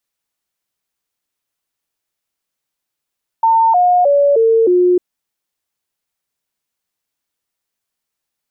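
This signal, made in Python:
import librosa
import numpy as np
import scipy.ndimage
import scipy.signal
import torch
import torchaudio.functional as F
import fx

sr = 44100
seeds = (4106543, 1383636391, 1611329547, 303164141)

y = fx.stepped_sweep(sr, from_hz=904.0, direction='down', per_octave=3, tones=5, dwell_s=0.31, gap_s=0.0, level_db=-8.0)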